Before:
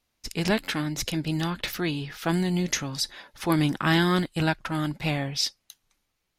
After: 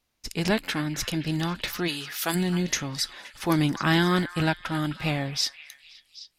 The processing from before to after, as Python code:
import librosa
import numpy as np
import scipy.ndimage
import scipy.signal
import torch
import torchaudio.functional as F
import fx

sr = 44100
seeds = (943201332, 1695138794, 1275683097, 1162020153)

y = fx.riaa(x, sr, side='recording', at=(1.87, 2.34), fade=0.02)
y = fx.echo_stepped(y, sr, ms=261, hz=1500.0, octaves=0.7, feedback_pct=70, wet_db=-10)